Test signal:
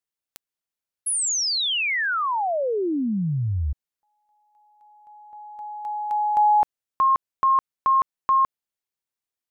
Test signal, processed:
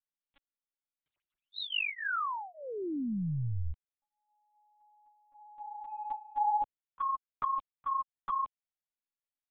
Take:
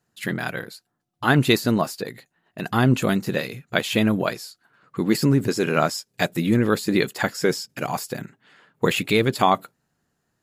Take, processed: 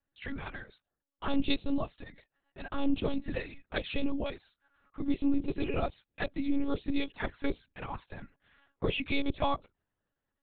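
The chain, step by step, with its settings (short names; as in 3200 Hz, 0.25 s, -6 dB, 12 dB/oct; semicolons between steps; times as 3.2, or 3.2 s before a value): envelope flanger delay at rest 3.4 ms, full sweep at -17.5 dBFS; monotone LPC vocoder at 8 kHz 280 Hz; gain -8 dB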